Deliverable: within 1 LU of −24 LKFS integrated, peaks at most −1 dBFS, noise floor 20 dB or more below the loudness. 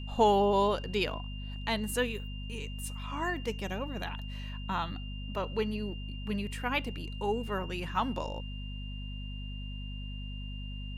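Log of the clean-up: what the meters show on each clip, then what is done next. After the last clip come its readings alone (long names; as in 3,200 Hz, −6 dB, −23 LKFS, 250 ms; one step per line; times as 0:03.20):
mains hum 50 Hz; hum harmonics up to 250 Hz; level of the hum −37 dBFS; interfering tone 2,800 Hz; level of the tone −47 dBFS; integrated loudness −34.0 LKFS; sample peak −13.0 dBFS; target loudness −24.0 LKFS
→ mains-hum notches 50/100/150/200/250 Hz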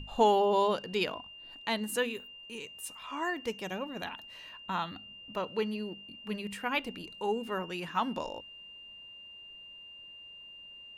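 mains hum none found; interfering tone 2,800 Hz; level of the tone −47 dBFS
→ notch filter 2,800 Hz, Q 30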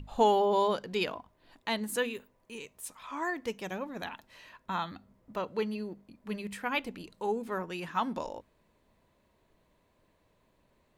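interfering tone none found; integrated loudness −33.5 LKFS; sample peak −13.0 dBFS; target loudness −24.0 LKFS
→ level +9.5 dB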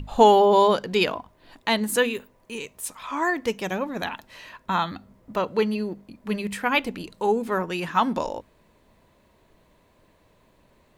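integrated loudness −24.0 LKFS; sample peak −3.5 dBFS; background noise floor −61 dBFS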